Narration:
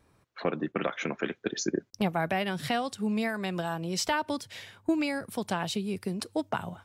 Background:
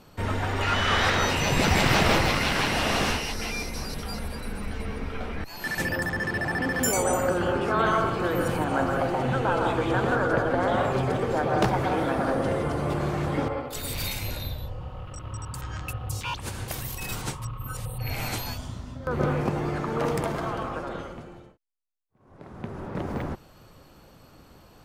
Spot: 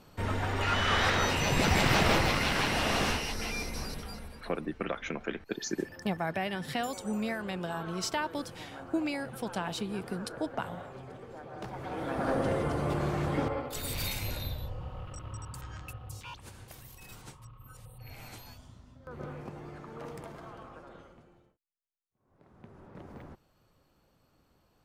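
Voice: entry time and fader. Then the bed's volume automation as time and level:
4.05 s, -4.0 dB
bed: 3.85 s -4 dB
4.72 s -20.5 dB
11.56 s -20.5 dB
12.32 s -3.5 dB
15.04 s -3.5 dB
16.74 s -16.5 dB

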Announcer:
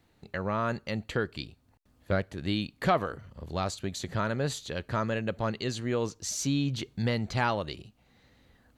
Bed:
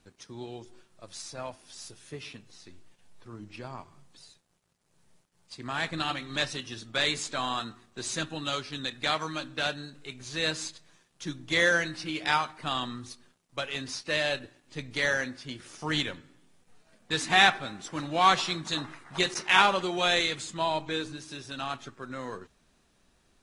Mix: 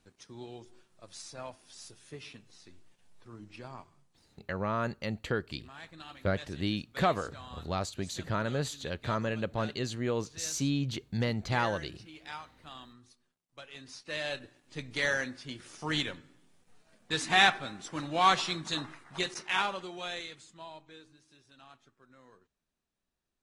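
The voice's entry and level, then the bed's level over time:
4.15 s, -2.0 dB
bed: 3.79 s -4.5 dB
4.27 s -17 dB
13.46 s -17 dB
14.62 s -2.5 dB
18.81 s -2.5 dB
21.00 s -21 dB

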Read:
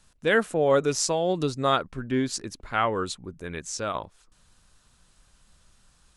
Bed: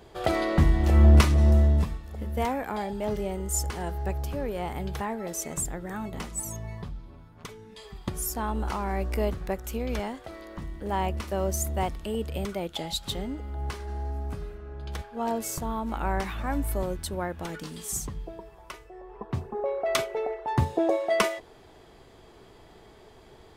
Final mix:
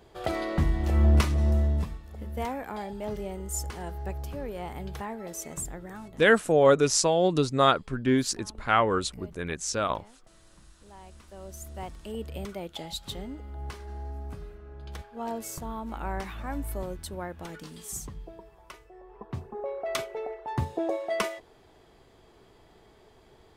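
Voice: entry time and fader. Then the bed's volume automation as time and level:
5.95 s, +2.0 dB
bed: 5.83 s -4.5 dB
6.65 s -21.5 dB
11.05 s -21.5 dB
12.19 s -5 dB

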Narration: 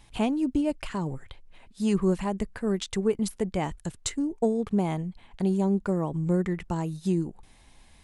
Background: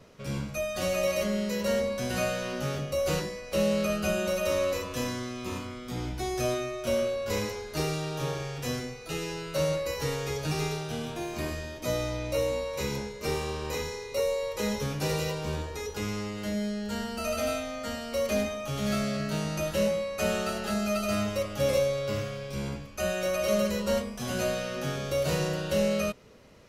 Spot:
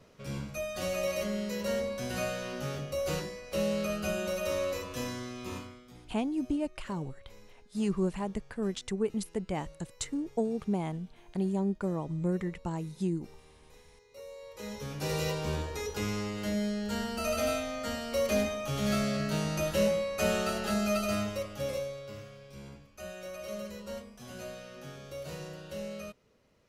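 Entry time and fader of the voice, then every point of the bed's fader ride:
5.95 s, -5.5 dB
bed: 5.58 s -4.5 dB
6.18 s -26.5 dB
13.83 s -26.5 dB
15.27 s -0.5 dB
20.95 s -0.5 dB
22.12 s -13.5 dB

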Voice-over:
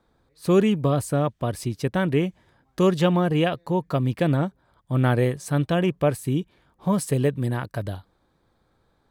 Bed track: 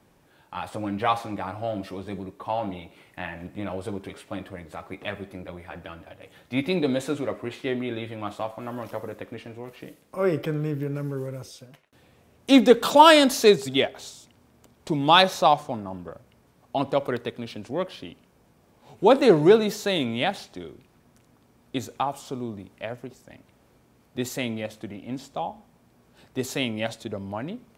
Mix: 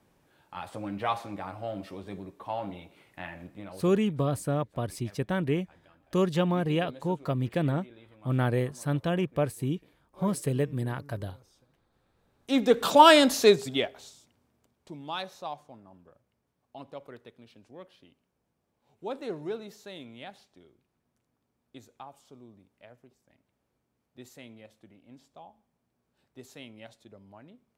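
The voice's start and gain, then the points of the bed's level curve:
3.35 s, -6.0 dB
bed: 3.40 s -6 dB
4.18 s -21 dB
12.05 s -21 dB
12.87 s -2.5 dB
13.48 s -2.5 dB
15.09 s -19 dB

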